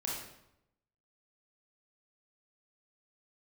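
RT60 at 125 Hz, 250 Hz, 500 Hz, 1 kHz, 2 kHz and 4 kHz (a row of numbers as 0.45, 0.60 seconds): 1.0, 0.90, 0.85, 0.80, 0.70, 0.65 seconds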